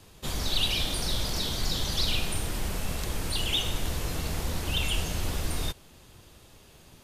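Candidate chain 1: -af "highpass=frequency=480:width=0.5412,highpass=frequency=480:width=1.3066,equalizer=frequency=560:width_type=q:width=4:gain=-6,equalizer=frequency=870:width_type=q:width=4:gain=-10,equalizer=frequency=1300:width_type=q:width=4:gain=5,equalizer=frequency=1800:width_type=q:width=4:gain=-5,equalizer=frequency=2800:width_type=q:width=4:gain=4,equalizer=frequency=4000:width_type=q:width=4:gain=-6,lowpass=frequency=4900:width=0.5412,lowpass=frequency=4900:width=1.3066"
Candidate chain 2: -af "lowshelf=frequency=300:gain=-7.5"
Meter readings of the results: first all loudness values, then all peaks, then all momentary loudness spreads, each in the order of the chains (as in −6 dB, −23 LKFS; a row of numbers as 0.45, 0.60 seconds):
−33.0, −31.0 LKFS; −16.5, −14.0 dBFS; 12, 8 LU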